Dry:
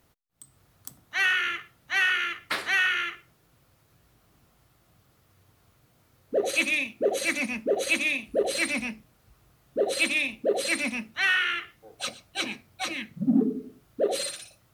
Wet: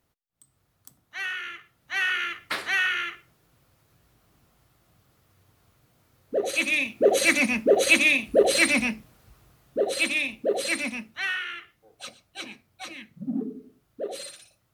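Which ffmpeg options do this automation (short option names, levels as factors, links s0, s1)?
-af "volume=2.11,afade=t=in:st=1.58:d=0.64:silence=0.421697,afade=t=in:st=6.61:d=0.54:silence=0.446684,afade=t=out:st=8.87:d=1.02:silence=0.473151,afade=t=out:st=10.71:d=0.74:silence=0.421697"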